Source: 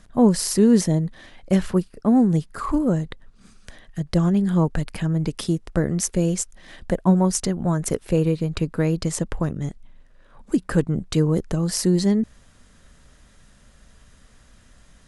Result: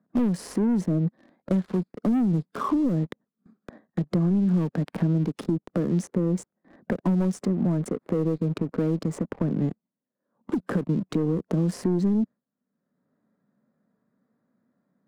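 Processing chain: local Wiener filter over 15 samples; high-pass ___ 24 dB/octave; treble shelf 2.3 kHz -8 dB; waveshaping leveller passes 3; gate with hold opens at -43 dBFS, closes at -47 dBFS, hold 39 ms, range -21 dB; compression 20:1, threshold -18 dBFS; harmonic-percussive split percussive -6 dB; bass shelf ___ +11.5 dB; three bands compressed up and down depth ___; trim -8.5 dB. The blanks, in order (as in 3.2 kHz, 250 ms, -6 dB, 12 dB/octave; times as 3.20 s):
200 Hz, 350 Hz, 70%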